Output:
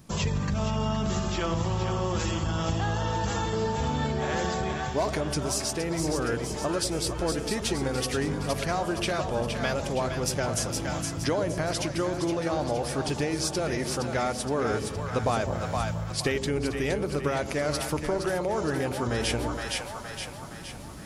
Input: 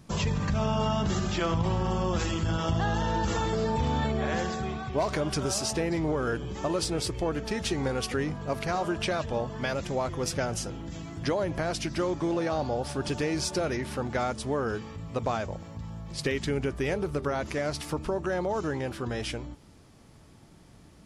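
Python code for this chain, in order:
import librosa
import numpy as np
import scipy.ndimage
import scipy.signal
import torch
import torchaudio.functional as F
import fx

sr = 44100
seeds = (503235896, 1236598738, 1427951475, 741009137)

y = fx.high_shelf(x, sr, hz=9100.0, db=10.0)
y = fx.echo_split(y, sr, split_hz=620.0, low_ms=101, high_ms=467, feedback_pct=52, wet_db=-7.0)
y = fx.rider(y, sr, range_db=10, speed_s=0.5)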